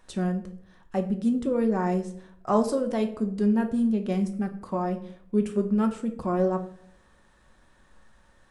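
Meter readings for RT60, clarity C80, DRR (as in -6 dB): 0.65 s, 16.0 dB, 5.5 dB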